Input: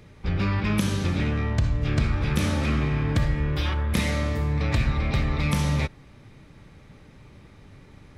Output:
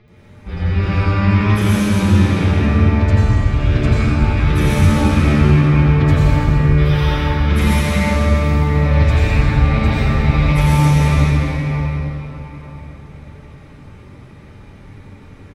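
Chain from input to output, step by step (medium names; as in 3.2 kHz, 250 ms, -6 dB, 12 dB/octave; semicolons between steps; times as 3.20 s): time stretch by phase-locked vocoder 1.9×; bands offset in time lows, highs 80 ms, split 4.4 kHz; reverberation RT60 4.5 s, pre-delay 80 ms, DRR -9.5 dB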